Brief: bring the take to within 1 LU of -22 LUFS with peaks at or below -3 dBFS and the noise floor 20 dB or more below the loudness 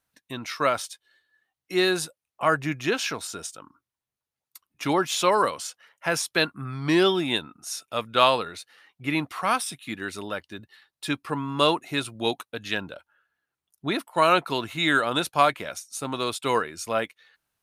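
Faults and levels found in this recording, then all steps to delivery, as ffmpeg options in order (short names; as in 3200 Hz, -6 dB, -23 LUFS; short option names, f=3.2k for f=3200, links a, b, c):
loudness -25.5 LUFS; peak -3.5 dBFS; loudness target -22.0 LUFS
-> -af "volume=3.5dB,alimiter=limit=-3dB:level=0:latency=1"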